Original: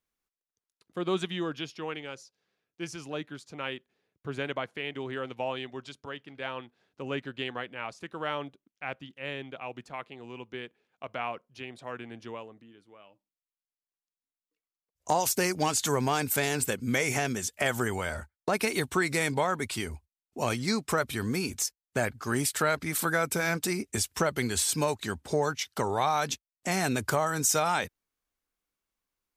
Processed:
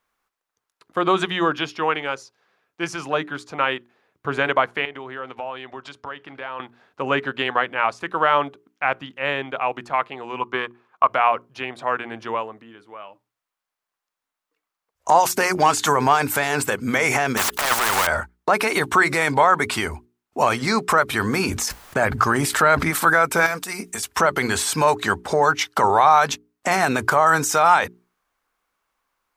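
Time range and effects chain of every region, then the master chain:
0:04.85–0:06.60: high-shelf EQ 10,000 Hz −8.5 dB + downward compressor 3 to 1, threshold −46 dBFS
0:10.41–0:11.08: parametric band 1,100 Hz +13 dB 0.46 octaves + transient designer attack +2 dB, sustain −4 dB
0:17.37–0:18.07: leveller curve on the samples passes 5 + compressor whose output falls as the input rises −23 dBFS, ratio −0.5 + every bin compressed towards the loudest bin 4 to 1
0:21.46–0:22.91: low-shelf EQ 320 Hz +6 dB + level that may fall only so fast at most 53 dB per second
0:23.46–0:24.03: high-shelf EQ 4,800 Hz +12 dB + comb filter 4.3 ms, depth 40% + downward compressor 8 to 1, threshold −34 dBFS
whole clip: mains-hum notches 60/120/180/240/300/360/420 Hz; brickwall limiter −21 dBFS; parametric band 1,100 Hz +13.5 dB 2.2 octaves; level +6 dB

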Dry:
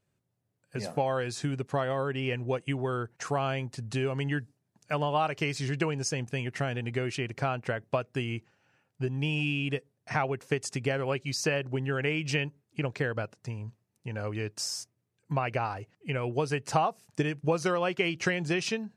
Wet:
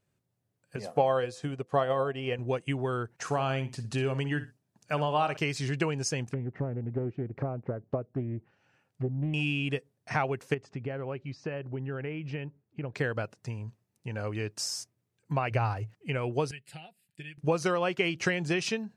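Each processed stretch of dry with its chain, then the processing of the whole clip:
0:00.76–0:02.39: hum removal 169.5 Hz, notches 4 + hollow resonant body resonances 490/710/1,100/3,100 Hz, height 7 dB, ringing for 20 ms + expander for the loud parts, over −44 dBFS
0:03.22–0:05.37: notch filter 2,100 Hz, Q 25 + repeating echo 60 ms, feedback 20%, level −13 dB
0:06.27–0:09.34: treble cut that deepens with the level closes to 570 Hz, closed at −30.5 dBFS + highs frequency-modulated by the lows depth 0.38 ms
0:10.54–0:12.95: downward compressor 1.5 to 1, threshold −36 dBFS + head-to-tape spacing loss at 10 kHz 36 dB
0:15.50–0:15.94: parametric band 110 Hz +12 dB 0.3 octaves + surface crackle 72 per second −54 dBFS
0:16.51–0:17.38: guitar amp tone stack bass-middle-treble 5-5-5 + phaser with its sweep stopped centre 2,600 Hz, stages 4 + comb filter 5.5 ms, depth 44%
whole clip: no processing

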